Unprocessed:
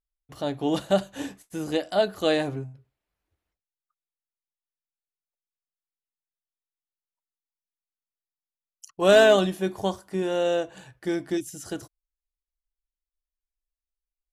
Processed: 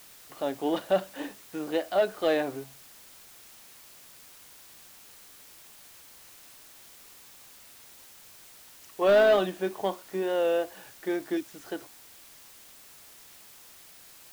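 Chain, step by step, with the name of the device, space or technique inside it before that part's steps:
tape answering machine (band-pass filter 310–2,900 Hz; soft clipping −14 dBFS, distortion −13 dB; tape wow and flutter; white noise bed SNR 20 dB)

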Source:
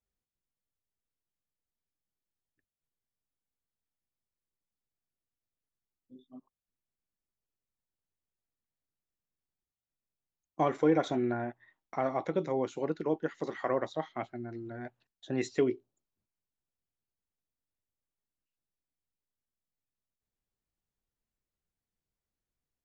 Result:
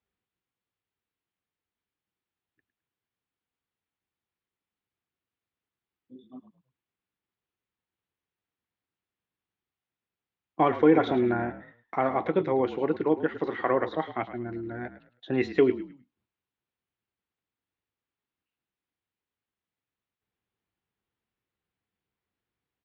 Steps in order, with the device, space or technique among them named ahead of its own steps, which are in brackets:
frequency-shifting delay pedal into a guitar cabinet (echo with shifted repeats 106 ms, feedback 30%, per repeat −41 Hz, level −13.5 dB; loudspeaker in its box 100–3,500 Hz, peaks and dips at 150 Hz −5 dB, 240 Hz −3 dB, 600 Hz −6 dB)
level +7.5 dB

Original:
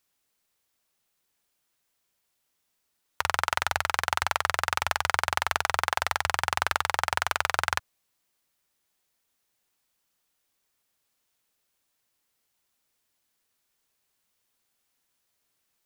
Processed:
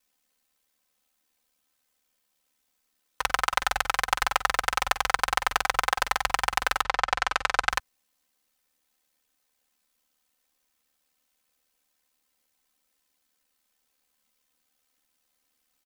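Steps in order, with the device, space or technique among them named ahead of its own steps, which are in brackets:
0:06.82–0:07.68: low-pass filter 4,700 Hz → 7,900 Hz 12 dB per octave
ring-modulated robot voice (ring modulation 37 Hz; comb filter 3.9 ms, depth 97%)
level +1.5 dB

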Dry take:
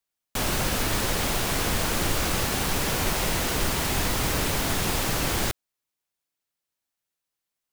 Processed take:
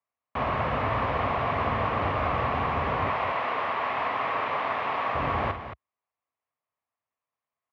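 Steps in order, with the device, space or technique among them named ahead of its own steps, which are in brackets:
0:03.08–0:05.15: meter weighting curve A
bass cabinet (loudspeaker in its box 64–2,300 Hz, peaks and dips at 180 Hz −9 dB, 340 Hz −9 dB, 670 Hz +5 dB, 1,100 Hz +10 dB, 1,500 Hz −6 dB)
loudspeakers that aren't time-aligned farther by 17 metres −10 dB, 76 metres −10 dB

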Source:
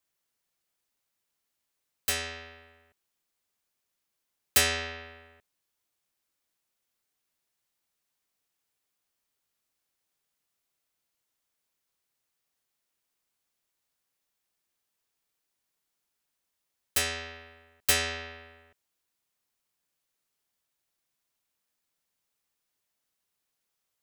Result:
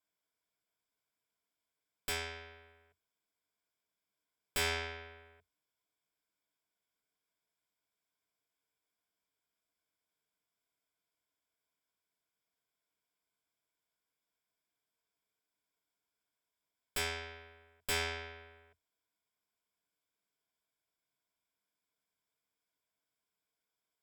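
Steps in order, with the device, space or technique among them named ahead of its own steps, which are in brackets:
EQ curve with evenly spaced ripples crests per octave 1.7, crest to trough 10 dB
tube preamp driven hard (tube saturation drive 26 dB, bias 0.8; low-shelf EQ 110 Hz −6 dB; high-shelf EQ 3,600 Hz −8 dB)
level +1 dB

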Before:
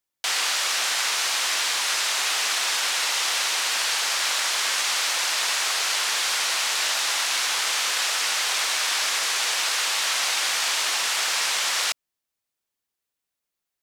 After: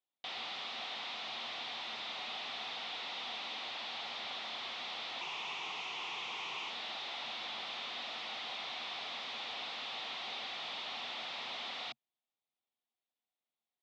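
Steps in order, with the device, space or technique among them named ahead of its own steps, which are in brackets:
guitar amplifier (tube saturation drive 33 dB, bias 0.55; bass and treble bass −9 dB, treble −5 dB; loudspeaker in its box 110–4,200 Hz, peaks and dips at 130 Hz +5 dB, 230 Hz +10 dB, 740 Hz +8 dB, 1,600 Hz −9 dB, 3,600 Hz +7 dB)
0:05.21–0:06.70: EQ curve with evenly spaced ripples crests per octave 0.73, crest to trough 10 dB
level −5.5 dB

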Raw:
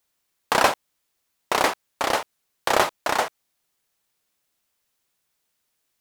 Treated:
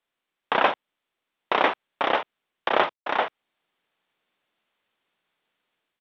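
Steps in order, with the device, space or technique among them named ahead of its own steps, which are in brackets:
0:02.69–0:03.14: downward expander −20 dBFS
Bluetooth headset (high-pass filter 180 Hz 12 dB per octave; automatic gain control gain up to 7 dB; downsampling to 8,000 Hz; level −3 dB; SBC 64 kbit/s 32,000 Hz)

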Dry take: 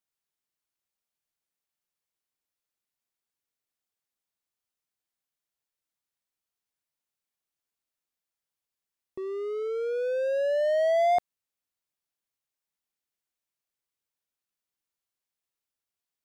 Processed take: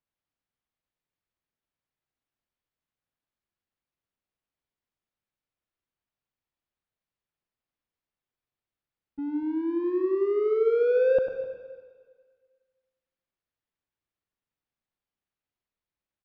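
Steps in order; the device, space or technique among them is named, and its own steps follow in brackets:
0:09.90–0:10.66: parametric band 4,600 Hz −9.5 dB 0.34 octaves
high-frequency loss of the air 140 metres
single-tap delay 255 ms −17 dB
monster voice (pitch shifter −5 semitones; low-shelf EQ 220 Hz +7.5 dB; single-tap delay 98 ms −10 dB; convolution reverb RT60 1.7 s, pre-delay 79 ms, DRR 9 dB)

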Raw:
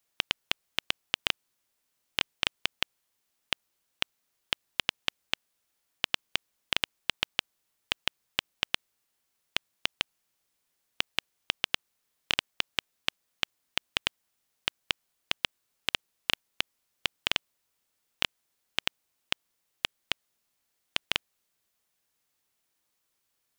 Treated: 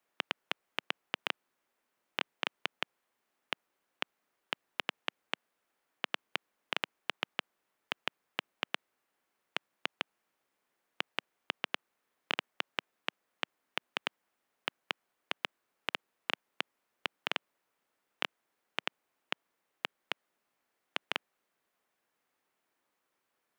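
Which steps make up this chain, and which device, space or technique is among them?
DJ mixer with the lows and highs turned down (three-way crossover with the lows and the highs turned down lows −16 dB, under 190 Hz, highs −14 dB, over 2,300 Hz; brickwall limiter −17 dBFS, peak gain reduction 5 dB)
level +5 dB

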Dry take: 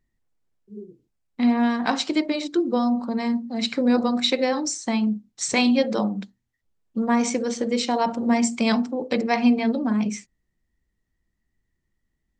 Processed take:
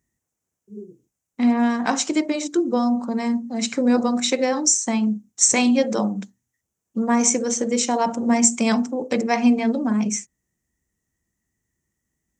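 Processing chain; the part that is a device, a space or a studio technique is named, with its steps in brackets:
budget condenser microphone (high-pass filter 72 Hz; high shelf with overshoot 5,300 Hz +6.5 dB, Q 3)
level +1.5 dB

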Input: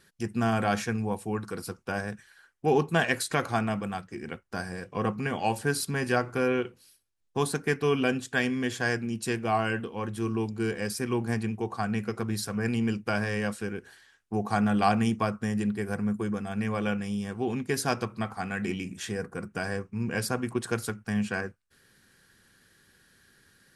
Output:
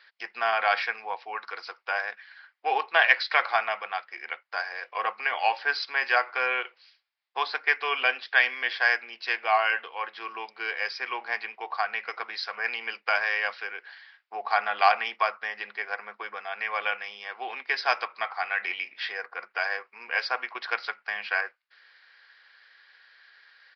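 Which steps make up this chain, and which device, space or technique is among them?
musical greeting card (downsampling to 11,025 Hz; high-pass filter 700 Hz 24 dB per octave; parametric band 2,100 Hz +7 dB 0.4 octaves)
level +5.5 dB

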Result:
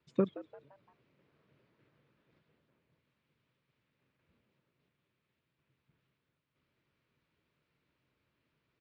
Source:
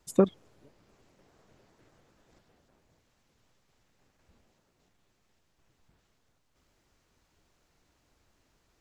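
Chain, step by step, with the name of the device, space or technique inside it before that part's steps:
frequency-shifting delay pedal into a guitar cabinet (echo with shifted repeats 172 ms, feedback 44%, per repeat +130 Hz, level −16 dB; loudspeaker in its box 95–3,900 Hz, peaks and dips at 140 Hz +7 dB, 760 Hz −10 dB, 2,400 Hz +4 dB)
level −7.5 dB

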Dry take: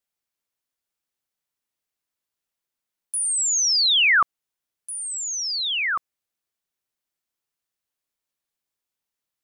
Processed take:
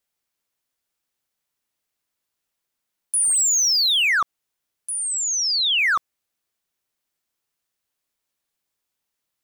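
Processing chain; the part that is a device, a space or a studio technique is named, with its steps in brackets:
limiter into clipper (brickwall limiter −20 dBFS, peak gain reduction 7.5 dB; hard clipping −21.5 dBFS, distortion −24 dB)
0:04.96–0:05.89: bass and treble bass −6 dB, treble 0 dB
level +5 dB

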